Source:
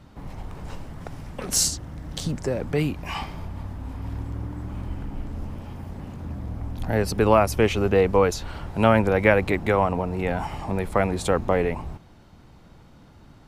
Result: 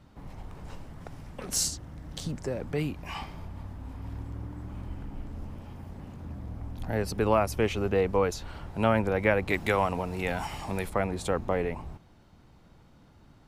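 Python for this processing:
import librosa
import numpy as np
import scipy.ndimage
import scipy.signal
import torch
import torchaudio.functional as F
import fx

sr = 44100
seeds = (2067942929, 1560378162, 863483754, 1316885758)

y = fx.high_shelf(x, sr, hz=2000.0, db=12.0, at=(9.5, 10.9))
y = F.gain(torch.from_numpy(y), -6.5).numpy()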